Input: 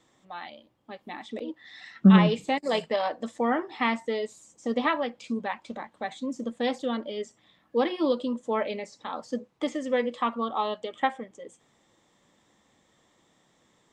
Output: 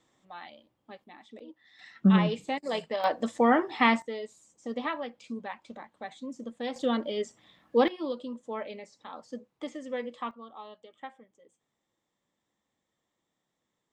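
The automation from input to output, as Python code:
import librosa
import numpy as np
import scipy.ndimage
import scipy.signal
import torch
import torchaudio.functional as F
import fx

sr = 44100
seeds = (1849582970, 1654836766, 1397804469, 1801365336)

y = fx.gain(x, sr, db=fx.steps((0.0, -5.0), (1.04, -12.0), (1.79, -5.0), (3.04, 3.5), (4.02, -7.0), (6.76, 2.0), (7.88, -8.5), (10.31, -17.0)))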